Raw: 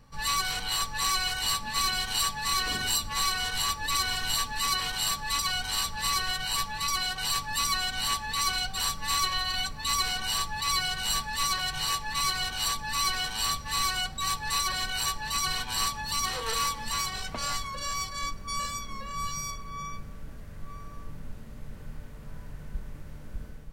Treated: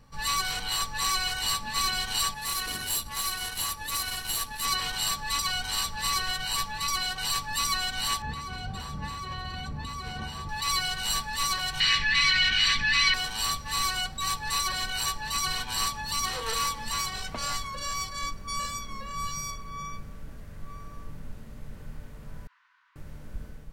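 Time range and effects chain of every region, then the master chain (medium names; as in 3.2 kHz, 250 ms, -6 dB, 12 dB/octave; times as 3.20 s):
2.34–4.65 s: peaking EQ 11 kHz +12.5 dB 0.45 oct + valve stage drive 23 dB, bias 0.75
8.22–10.49 s: high-pass 92 Hz + compression 10:1, threshold -30 dBFS + tilt EQ -4 dB/octave
11.80–13.14 s: FFT filter 260 Hz 0 dB, 410 Hz -5 dB, 900 Hz -10 dB, 2 kHz +14 dB, 5 kHz +2 dB, 13 kHz -22 dB + level flattener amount 50%
22.47–22.96 s: Chebyshev high-pass 980 Hz, order 6 + distance through air 230 m + detune thickener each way 50 cents
whole clip: none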